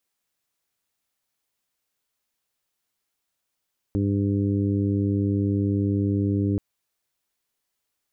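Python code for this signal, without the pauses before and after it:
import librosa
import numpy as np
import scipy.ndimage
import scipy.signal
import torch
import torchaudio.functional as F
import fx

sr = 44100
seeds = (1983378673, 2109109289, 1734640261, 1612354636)

y = fx.additive_steady(sr, length_s=2.63, hz=100.0, level_db=-23, upper_db=(-3.5, -2.0, -9, -17.0))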